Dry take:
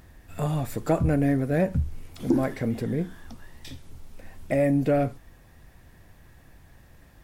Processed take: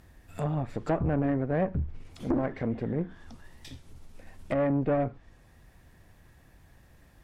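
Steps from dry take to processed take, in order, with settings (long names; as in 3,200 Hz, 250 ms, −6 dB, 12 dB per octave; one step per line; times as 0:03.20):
tube saturation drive 20 dB, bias 0.7
treble cut that deepens with the level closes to 1,900 Hz, closed at −26 dBFS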